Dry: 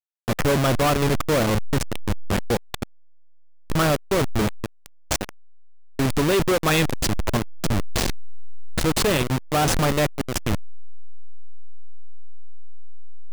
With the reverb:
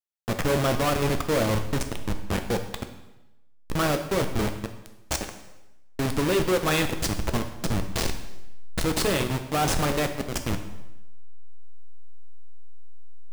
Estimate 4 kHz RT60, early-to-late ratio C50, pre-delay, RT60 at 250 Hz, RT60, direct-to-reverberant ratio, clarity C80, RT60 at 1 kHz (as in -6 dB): 0.90 s, 9.5 dB, 4 ms, 0.95 s, 0.95 s, 6.0 dB, 11.5 dB, 0.95 s